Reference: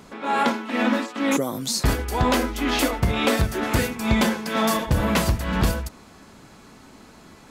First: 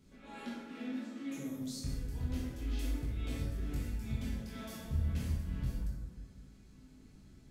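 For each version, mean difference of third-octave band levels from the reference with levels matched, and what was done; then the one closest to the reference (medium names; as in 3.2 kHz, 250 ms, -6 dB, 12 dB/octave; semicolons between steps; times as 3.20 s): 6.5 dB: amplifier tone stack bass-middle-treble 10-0-1; compression 1.5:1, threshold -51 dBFS, peak gain reduction 9.5 dB; chorus 0.3 Hz, delay 19.5 ms, depth 7.2 ms; plate-style reverb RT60 1.7 s, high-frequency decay 0.45×, DRR -4.5 dB; trim +3 dB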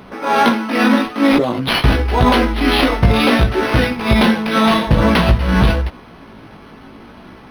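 4.0 dB: dynamic bell 3.6 kHz, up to +5 dB, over -39 dBFS, Q 1.3; chorus 0.53 Hz, delay 15.5 ms, depth 3.5 ms; loudness maximiser +13 dB; decimation joined by straight lines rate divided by 6×; trim -1 dB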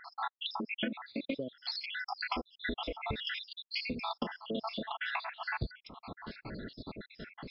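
20.5 dB: random holes in the spectrogram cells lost 78%; compression 16:1, threshold -40 dBFS, peak gain reduction 24.5 dB; trim +7.5 dB; MP3 40 kbps 12 kHz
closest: second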